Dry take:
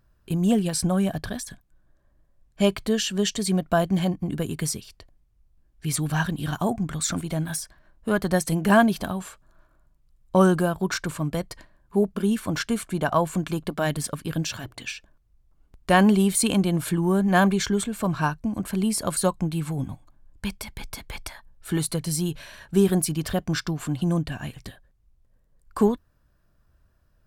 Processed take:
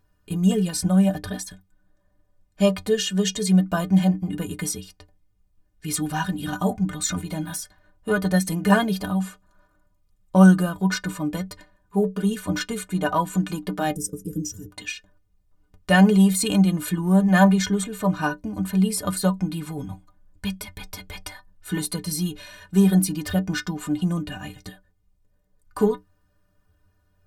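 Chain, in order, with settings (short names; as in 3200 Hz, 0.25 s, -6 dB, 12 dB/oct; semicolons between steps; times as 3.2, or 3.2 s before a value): spectral gain 13.94–14.7, 530–4900 Hz -27 dB; metallic resonator 89 Hz, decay 0.25 s, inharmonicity 0.03; gain +9 dB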